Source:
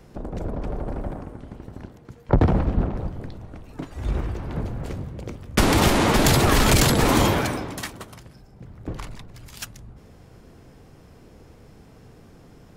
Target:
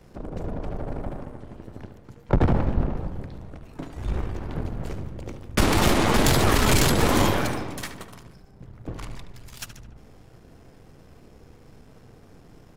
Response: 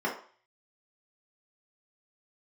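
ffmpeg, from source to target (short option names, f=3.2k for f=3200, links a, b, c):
-filter_complex "[0:a]aeval=exprs='if(lt(val(0),0),0.447*val(0),val(0))':c=same,asplit=2[a][b];[b]adelay=73,lowpass=f=4.3k:p=1,volume=-9.5dB,asplit=2[c][d];[d]adelay=73,lowpass=f=4.3k:p=1,volume=0.53,asplit=2[e][f];[f]adelay=73,lowpass=f=4.3k:p=1,volume=0.53,asplit=2[g][h];[h]adelay=73,lowpass=f=4.3k:p=1,volume=0.53,asplit=2[i][j];[j]adelay=73,lowpass=f=4.3k:p=1,volume=0.53,asplit=2[k][l];[l]adelay=73,lowpass=f=4.3k:p=1,volume=0.53[m];[a][c][e][g][i][k][m]amix=inputs=7:normalize=0"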